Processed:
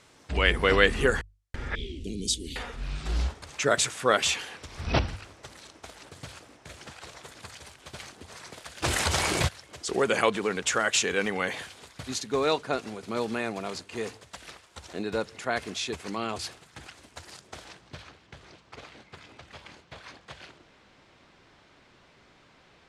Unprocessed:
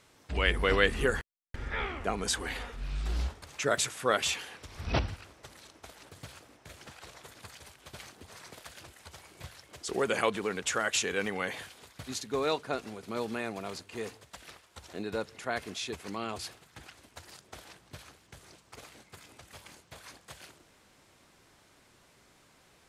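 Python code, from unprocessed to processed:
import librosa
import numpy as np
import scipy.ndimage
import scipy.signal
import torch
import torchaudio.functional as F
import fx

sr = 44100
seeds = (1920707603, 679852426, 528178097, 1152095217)

y = fx.ellip_bandstop(x, sr, low_hz=350.0, high_hz=3300.0, order=3, stop_db=60, at=(1.75, 2.56))
y = fx.filter_sweep_lowpass(y, sr, from_hz=9100.0, to_hz=4000.0, start_s=17.46, end_s=18.12, q=0.85)
y = fx.hum_notches(y, sr, base_hz=50, count=2)
y = fx.env_flatten(y, sr, amount_pct=70, at=(8.82, 9.47), fade=0.02)
y = F.gain(torch.from_numpy(y), 4.5).numpy()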